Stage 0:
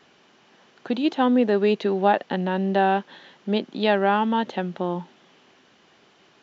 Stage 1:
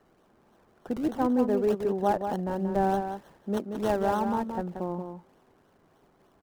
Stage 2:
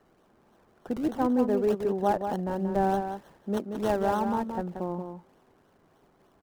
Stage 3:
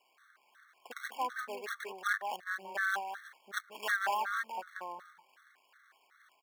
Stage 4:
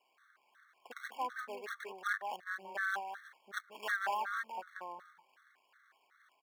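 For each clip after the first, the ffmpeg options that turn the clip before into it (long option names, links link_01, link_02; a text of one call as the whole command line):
ffmpeg -i in.wav -filter_complex "[0:a]acrossover=split=1500[link_01][link_02];[link_02]acrusher=samples=35:mix=1:aa=0.000001:lfo=1:lforange=35:lforate=3.3[link_03];[link_01][link_03]amix=inputs=2:normalize=0,asplit=2[link_04][link_05];[link_05]adelay=180.8,volume=-7dB,highshelf=frequency=4000:gain=-4.07[link_06];[link_04][link_06]amix=inputs=2:normalize=0,volume=-6dB" out.wav
ffmpeg -i in.wav -af anull out.wav
ffmpeg -i in.wav -af "highpass=frequency=1600:width_type=q:width=2.5,afftfilt=real='re*gt(sin(2*PI*2.7*pts/sr)*(1-2*mod(floor(b*sr/1024/1100),2)),0)':imag='im*gt(sin(2*PI*2.7*pts/sr)*(1-2*mod(floor(b*sr/1024/1100),2)),0)':win_size=1024:overlap=0.75,volume=5dB" out.wav
ffmpeg -i in.wav -af "highshelf=frequency=4000:gain=-5.5,volume=-2.5dB" out.wav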